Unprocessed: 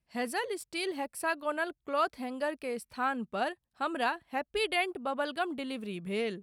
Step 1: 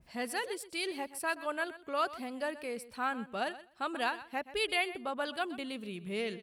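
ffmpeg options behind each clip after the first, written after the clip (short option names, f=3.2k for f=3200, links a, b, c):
-af "acompressor=mode=upward:threshold=-43dB:ratio=2.5,aecho=1:1:126|252:0.168|0.0252,adynamicequalizer=threshold=0.01:dfrequency=1700:dqfactor=0.7:tfrequency=1700:tqfactor=0.7:attack=5:release=100:ratio=0.375:range=2:mode=boostabove:tftype=highshelf,volume=-3.5dB"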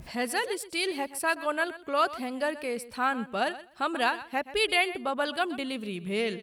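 -af "acompressor=mode=upward:threshold=-43dB:ratio=2.5,volume=6.5dB"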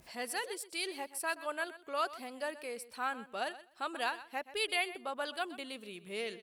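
-af "bass=f=250:g=-12,treble=f=4k:g=4,volume=-8.5dB"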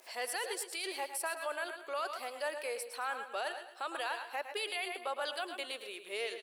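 -af "highpass=f=410:w=0.5412,highpass=f=410:w=1.3066,alimiter=level_in=7.5dB:limit=-24dB:level=0:latency=1:release=28,volume=-7.5dB,aecho=1:1:109|218|327|436:0.299|0.119|0.0478|0.0191,volume=4dB"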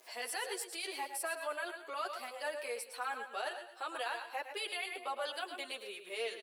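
-filter_complex "[0:a]asplit=2[a][b];[b]adelay=7.7,afreqshift=-2[c];[a][c]amix=inputs=2:normalize=1,volume=1.5dB"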